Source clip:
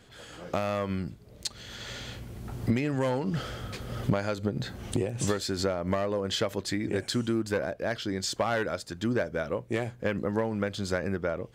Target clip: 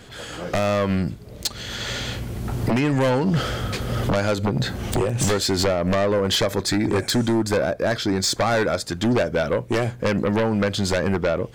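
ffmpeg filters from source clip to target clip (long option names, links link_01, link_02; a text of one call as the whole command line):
ffmpeg -i in.wav -filter_complex "[0:a]aeval=exprs='0.168*sin(PI/2*2.51*val(0)/0.168)':channel_layout=same,asettb=1/sr,asplit=3[link_01][link_02][link_03];[link_01]atrim=end=6.394[link_04];[link_02]atrim=start=6.39:end=8.84,asetpts=PTS-STARTPTS,afade=type=in:duration=0.004:curve=qsin,afade=type=out:start_time=2.446:duration=0.004:curve=qsin,bandreject=frequency=2900:width=5.1[link_05];[link_03]atrim=start=8.836[link_06];[link_04][link_05]acrossfade=duration=0.004:curve1=hsin:curve2=qsin[link_07];[link_07][link_06]acrossfade=duration=0.004:curve1=qsin:curve2=hsin" out.wav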